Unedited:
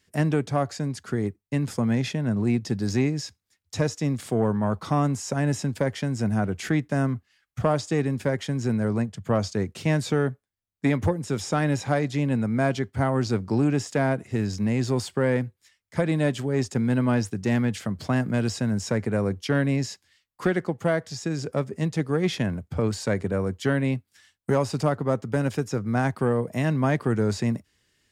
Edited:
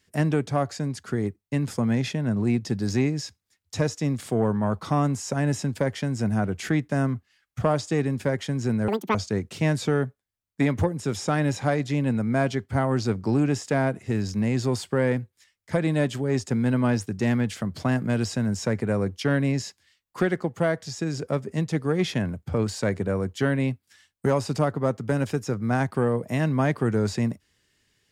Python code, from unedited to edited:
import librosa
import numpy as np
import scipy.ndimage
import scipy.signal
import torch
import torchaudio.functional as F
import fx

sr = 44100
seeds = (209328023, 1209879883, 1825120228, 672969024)

y = fx.edit(x, sr, fx.speed_span(start_s=8.88, length_s=0.51, speed=1.91), tone=tone)